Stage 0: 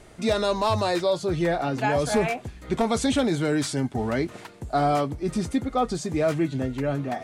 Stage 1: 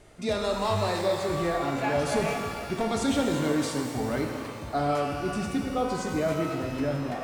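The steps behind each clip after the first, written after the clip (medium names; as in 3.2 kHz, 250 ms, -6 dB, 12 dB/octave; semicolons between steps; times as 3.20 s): pitch-shifted reverb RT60 2.2 s, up +12 st, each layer -8 dB, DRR 2 dB; trim -5.5 dB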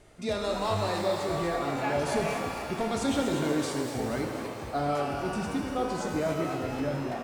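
frequency-shifting echo 240 ms, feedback 57%, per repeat +100 Hz, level -10 dB; trim -2.5 dB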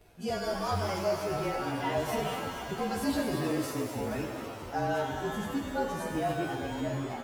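frequency axis rescaled in octaves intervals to 109%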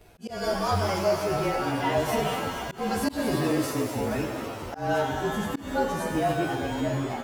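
slow attack 172 ms; trim +5.5 dB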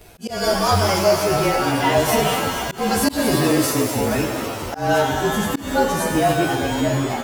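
treble shelf 3.7 kHz +7 dB; trim +7.5 dB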